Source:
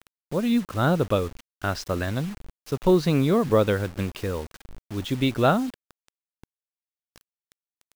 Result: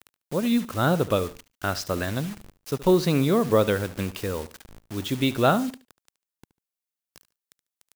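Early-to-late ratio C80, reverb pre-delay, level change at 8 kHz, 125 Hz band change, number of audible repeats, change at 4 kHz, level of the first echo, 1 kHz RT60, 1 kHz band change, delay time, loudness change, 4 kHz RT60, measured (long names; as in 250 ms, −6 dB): no reverb audible, no reverb audible, +4.5 dB, −1.5 dB, 2, +2.0 dB, −17.0 dB, no reverb audible, +0.5 dB, 73 ms, 0.0 dB, no reverb audible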